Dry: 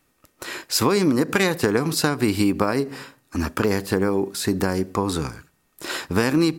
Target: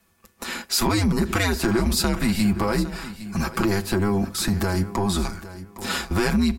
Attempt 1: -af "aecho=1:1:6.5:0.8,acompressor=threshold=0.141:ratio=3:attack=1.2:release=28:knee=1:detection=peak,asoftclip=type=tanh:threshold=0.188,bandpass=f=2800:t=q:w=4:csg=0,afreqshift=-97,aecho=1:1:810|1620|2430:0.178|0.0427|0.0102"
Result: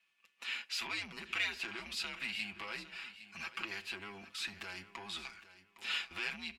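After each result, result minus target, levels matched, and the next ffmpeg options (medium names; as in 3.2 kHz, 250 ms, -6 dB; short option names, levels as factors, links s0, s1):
saturation: distortion +14 dB; 2 kHz band +7.5 dB
-af "aecho=1:1:6.5:0.8,acompressor=threshold=0.141:ratio=3:attack=1.2:release=28:knee=1:detection=peak,asoftclip=type=tanh:threshold=0.501,bandpass=f=2800:t=q:w=4:csg=0,afreqshift=-97,aecho=1:1:810|1620|2430:0.178|0.0427|0.0102"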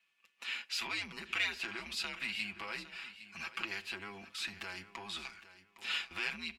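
2 kHz band +7.5 dB
-af "aecho=1:1:6.5:0.8,acompressor=threshold=0.141:ratio=3:attack=1.2:release=28:knee=1:detection=peak,asoftclip=type=tanh:threshold=0.501,afreqshift=-97,aecho=1:1:810|1620|2430:0.178|0.0427|0.0102"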